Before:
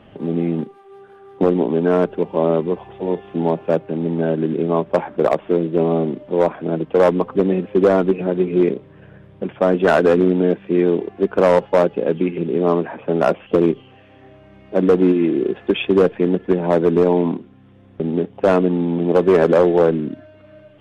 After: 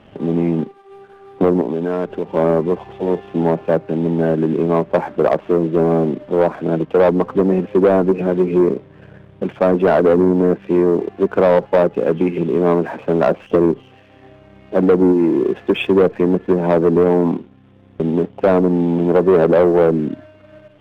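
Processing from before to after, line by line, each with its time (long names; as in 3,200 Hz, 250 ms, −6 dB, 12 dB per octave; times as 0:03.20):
0:01.61–0:02.33: downward compressor 2.5 to 1, threshold −23 dBFS
whole clip: treble cut that deepens with the level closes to 1,100 Hz, closed at −10.5 dBFS; leveller curve on the samples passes 1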